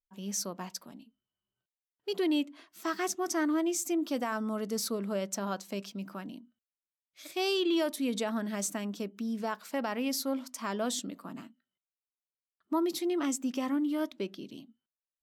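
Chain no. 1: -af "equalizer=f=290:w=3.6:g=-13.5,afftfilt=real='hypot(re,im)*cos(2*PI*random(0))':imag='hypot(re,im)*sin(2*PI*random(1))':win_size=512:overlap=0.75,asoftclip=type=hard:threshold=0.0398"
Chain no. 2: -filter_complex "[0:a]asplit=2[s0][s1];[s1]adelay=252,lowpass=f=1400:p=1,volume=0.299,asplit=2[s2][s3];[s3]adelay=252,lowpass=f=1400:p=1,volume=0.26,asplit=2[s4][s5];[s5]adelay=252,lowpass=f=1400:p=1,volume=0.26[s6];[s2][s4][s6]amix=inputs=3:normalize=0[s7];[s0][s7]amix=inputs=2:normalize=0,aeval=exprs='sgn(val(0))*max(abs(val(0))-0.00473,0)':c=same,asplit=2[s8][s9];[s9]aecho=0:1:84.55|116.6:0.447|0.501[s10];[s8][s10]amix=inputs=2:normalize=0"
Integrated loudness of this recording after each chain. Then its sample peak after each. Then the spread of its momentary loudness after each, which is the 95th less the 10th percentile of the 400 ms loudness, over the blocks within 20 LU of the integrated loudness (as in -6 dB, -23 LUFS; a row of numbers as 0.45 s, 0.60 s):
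-42.0 LUFS, -32.0 LUFS; -28.0 dBFS, -16.5 dBFS; 12 LU, 14 LU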